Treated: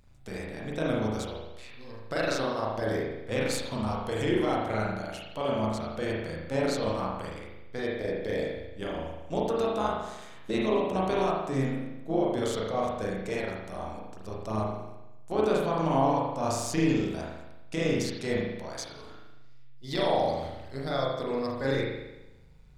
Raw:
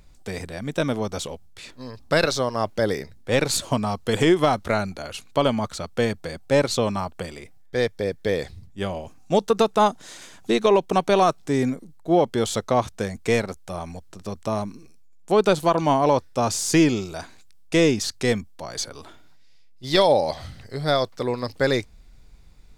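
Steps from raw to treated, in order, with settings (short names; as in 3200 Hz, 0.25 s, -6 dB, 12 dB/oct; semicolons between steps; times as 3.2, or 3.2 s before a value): limiter -12 dBFS, peak gain reduction 5.5 dB; AM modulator 130 Hz, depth 50%; reverb RT60 1.0 s, pre-delay 37 ms, DRR -4.5 dB; gain -7.5 dB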